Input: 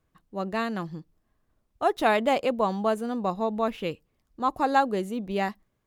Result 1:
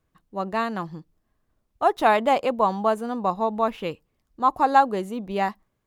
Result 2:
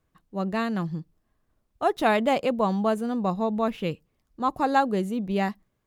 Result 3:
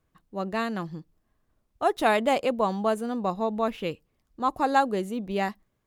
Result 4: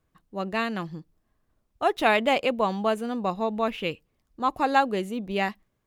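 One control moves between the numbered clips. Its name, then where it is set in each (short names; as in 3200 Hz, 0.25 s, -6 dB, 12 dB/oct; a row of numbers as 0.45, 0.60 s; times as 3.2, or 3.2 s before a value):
dynamic EQ, frequency: 960, 160, 9200, 2600 Hz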